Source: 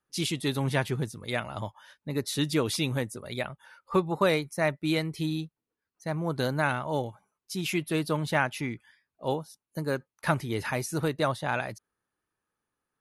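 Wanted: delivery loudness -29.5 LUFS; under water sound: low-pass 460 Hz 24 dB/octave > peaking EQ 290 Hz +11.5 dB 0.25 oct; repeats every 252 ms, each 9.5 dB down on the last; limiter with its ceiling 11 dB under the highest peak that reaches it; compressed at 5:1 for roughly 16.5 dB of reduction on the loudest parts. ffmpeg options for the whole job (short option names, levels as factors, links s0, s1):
-af "acompressor=threshold=0.0112:ratio=5,alimiter=level_in=4.22:limit=0.0631:level=0:latency=1,volume=0.237,lowpass=f=460:w=0.5412,lowpass=f=460:w=1.3066,equalizer=f=290:t=o:w=0.25:g=11.5,aecho=1:1:252|504|756|1008:0.335|0.111|0.0365|0.012,volume=6.68"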